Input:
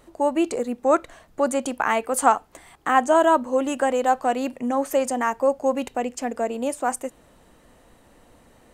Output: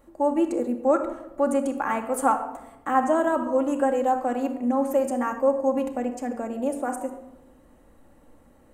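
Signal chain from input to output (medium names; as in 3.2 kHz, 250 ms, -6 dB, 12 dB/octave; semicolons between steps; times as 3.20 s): peaking EQ 4.2 kHz -10 dB 2.2 oct; simulated room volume 3800 m³, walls furnished, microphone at 2.3 m; trim -4 dB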